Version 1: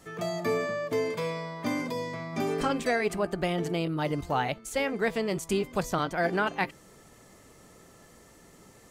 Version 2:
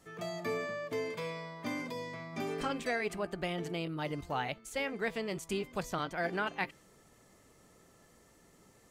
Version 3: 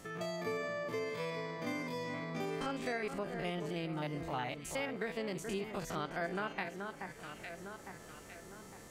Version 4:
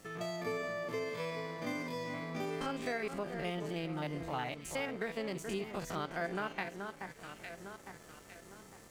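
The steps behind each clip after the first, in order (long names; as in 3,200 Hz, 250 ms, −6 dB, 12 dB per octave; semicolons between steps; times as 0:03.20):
dynamic equaliser 2,600 Hz, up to +4 dB, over −45 dBFS, Q 0.8; level −8 dB
spectrum averaged block by block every 50 ms; delay that swaps between a low-pass and a high-pass 428 ms, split 1,800 Hz, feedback 56%, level −9.5 dB; downward compressor 2 to 1, threshold −55 dBFS, peak gain reduction 13.5 dB; level +10 dB
dead-zone distortion −58.5 dBFS; level +1 dB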